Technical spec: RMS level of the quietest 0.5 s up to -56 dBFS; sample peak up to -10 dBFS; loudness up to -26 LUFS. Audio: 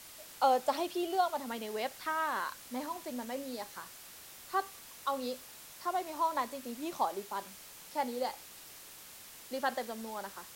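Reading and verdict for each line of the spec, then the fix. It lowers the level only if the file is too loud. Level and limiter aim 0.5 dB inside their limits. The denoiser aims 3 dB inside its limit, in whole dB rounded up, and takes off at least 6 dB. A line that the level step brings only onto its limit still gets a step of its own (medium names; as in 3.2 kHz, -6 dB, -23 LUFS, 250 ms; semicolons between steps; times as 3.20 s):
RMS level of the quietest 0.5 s -52 dBFS: fail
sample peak -14.5 dBFS: pass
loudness -36.0 LUFS: pass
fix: noise reduction 7 dB, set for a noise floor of -52 dBFS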